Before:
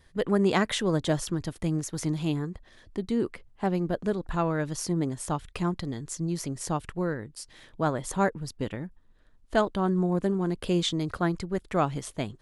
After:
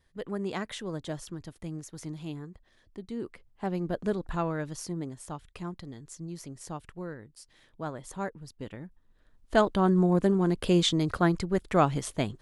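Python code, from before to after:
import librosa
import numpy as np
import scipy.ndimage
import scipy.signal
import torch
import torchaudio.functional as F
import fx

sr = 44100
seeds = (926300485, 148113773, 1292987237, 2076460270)

y = fx.gain(x, sr, db=fx.line((3.06, -10.0), (4.13, -1.0), (5.25, -9.5), (8.52, -9.5), (9.71, 2.5)))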